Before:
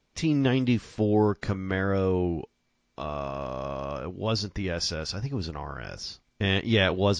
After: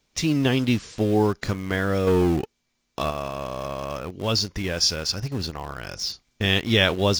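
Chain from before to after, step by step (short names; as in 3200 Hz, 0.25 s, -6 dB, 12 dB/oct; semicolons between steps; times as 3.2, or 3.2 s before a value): high shelf 3600 Hz +10 dB; in parallel at -11.5 dB: bit-crush 5-bit; 2.07–3.11 on the sum: sample leveller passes 2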